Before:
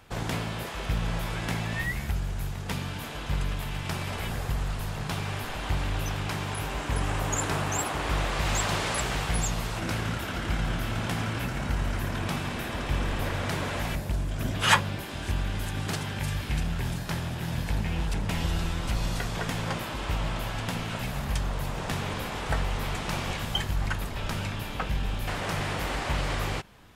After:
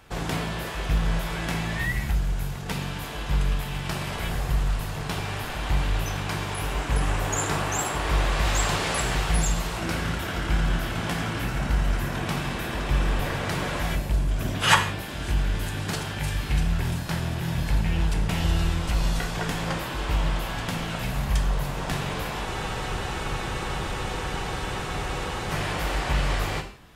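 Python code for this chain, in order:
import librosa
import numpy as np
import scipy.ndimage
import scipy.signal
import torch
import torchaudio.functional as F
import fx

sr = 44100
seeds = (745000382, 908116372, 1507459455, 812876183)

y = fx.rev_gated(x, sr, seeds[0], gate_ms=200, shape='falling', drr_db=5.0)
y = fx.spec_freeze(y, sr, seeds[1], at_s=22.47, hold_s=3.03)
y = y * 10.0 ** (1.5 / 20.0)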